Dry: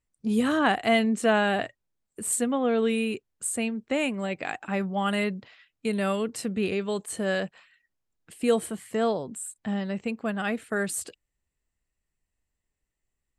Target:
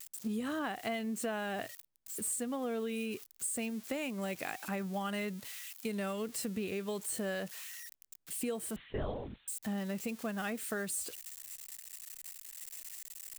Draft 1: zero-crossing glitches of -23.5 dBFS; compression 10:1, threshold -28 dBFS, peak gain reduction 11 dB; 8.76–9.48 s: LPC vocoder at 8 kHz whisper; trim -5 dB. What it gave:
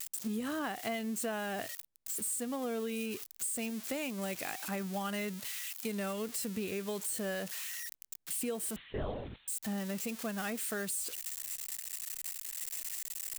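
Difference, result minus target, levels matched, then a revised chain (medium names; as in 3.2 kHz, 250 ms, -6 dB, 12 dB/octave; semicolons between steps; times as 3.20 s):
zero-crossing glitches: distortion +7 dB
zero-crossing glitches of -31 dBFS; compression 10:1, threshold -28 dBFS, peak gain reduction 11 dB; 8.76–9.48 s: LPC vocoder at 8 kHz whisper; trim -5 dB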